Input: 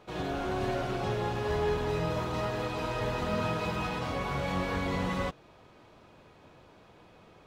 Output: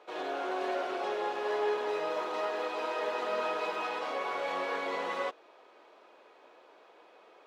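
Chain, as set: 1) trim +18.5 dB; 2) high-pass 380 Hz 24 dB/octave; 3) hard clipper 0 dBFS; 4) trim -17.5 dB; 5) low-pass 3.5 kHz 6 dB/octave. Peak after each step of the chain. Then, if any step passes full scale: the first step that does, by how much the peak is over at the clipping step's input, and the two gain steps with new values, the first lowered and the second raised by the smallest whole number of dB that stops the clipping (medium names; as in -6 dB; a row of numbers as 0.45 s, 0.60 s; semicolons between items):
-0.5 dBFS, -3.0 dBFS, -3.0 dBFS, -20.5 dBFS, -21.0 dBFS; nothing clips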